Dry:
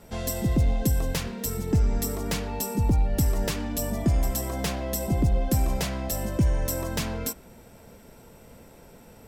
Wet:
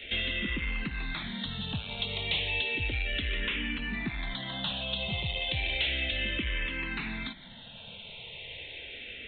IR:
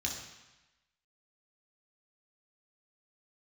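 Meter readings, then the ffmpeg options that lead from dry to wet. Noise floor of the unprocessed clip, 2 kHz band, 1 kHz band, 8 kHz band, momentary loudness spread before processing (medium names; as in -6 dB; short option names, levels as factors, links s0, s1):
-51 dBFS, +8.5 dB, -8.5 dB, under -40 dB, 6 LU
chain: -filter_complex "[0:a]aexciter=amount=15.9:drive=6.5:freq=2000,aresample=8000,asoftclip=type=tanh:threshold=0.119,aresample=44100,acrossover=split=300|810[s0][s1][s2];[s0]acompressor=threshold=0.0251:ratio=4[s3];[s1]acompressor=threshold=0.00631:ratio=4[s4];[s2]acompressor=threshold=0.0398:ratio=4[s5];[s3][s4][s5]amix=inputs=3:normalize=0,asplit=2[s6][s7];[s7]afreqshift=-0.33[s8];[s6][s8]amix=inputs=2:normalize=1"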